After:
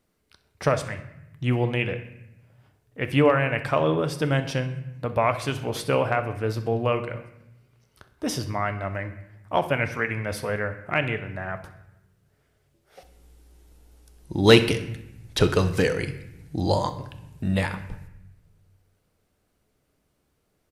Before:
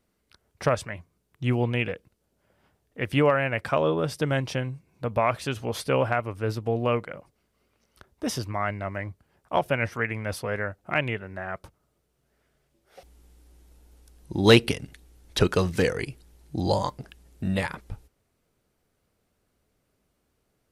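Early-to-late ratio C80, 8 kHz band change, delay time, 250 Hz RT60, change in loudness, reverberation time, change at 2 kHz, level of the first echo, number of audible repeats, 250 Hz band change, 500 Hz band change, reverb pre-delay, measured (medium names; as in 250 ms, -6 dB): 14.0 dB, +1.5 dB, 64 ms, 1.4 s, +1.5 dB, 0.85 s, +1.5 dB, -17.0 dB, 1, +1.5 dB, +1.5 dB, 6 ms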